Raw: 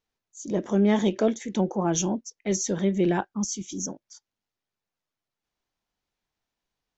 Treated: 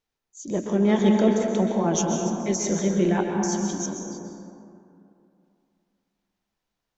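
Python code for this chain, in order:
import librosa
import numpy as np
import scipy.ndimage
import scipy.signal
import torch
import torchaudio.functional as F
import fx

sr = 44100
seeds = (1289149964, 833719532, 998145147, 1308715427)

y = fx.rev_plate(x, sr, seeds[0], rt60_s=2.7, hf_ratio=0.35, predelay_ms=115, drr_db=1.0)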